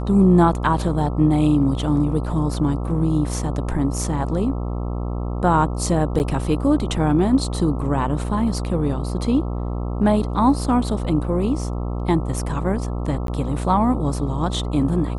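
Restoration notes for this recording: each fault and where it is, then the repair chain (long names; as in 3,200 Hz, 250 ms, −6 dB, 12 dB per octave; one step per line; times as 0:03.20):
mains buzz 60 Hz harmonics 22 −25 dBFS
0:06.19–0:06.20: drop-out 9.2 ms
0:13.27–0:13.28: drop-out 12 ms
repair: hum removal 60 Hz, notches 22
repair the gap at 0:06.19, 9.2 ms
repair the gap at 0:13.27, 12 ms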